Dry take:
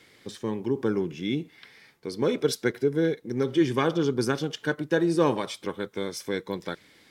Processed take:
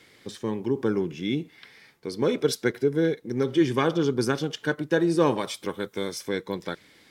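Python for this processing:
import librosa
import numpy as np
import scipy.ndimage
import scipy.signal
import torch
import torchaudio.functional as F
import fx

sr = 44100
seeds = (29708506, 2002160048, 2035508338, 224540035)

y = fx.high_shelf(x, sr, hz=fx.line((5.38, 11000.0), (6.13, 5500.0)), db=8.5, at=(5.38, 6.13), fade=0.02)
y = y * 10.0 ** (1.0 / 20.0)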